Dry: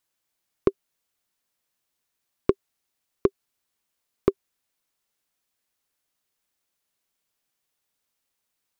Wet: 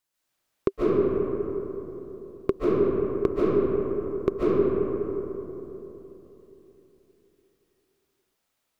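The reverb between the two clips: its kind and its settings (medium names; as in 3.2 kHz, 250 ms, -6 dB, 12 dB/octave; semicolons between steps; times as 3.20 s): algorithmic reverb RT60 3.6 s, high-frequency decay 0.35×, pre-delay 105 ms, DRR -9 dB; trim -3.5 dB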